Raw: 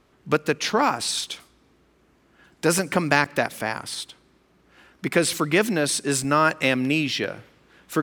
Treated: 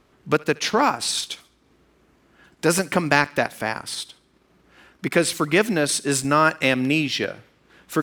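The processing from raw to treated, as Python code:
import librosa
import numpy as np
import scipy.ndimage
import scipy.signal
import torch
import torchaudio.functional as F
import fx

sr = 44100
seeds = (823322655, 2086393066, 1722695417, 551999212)

y = fx.transient(x, sr, attack_db=-1, sustain_db=-5)
y = fx.echo_thinned(y, sr, ms=70, feedback_pct=38, hz=1100.0, wet_db=-21.0)
y = F.gain(torch.from_numpy(y), 2.0).numpy()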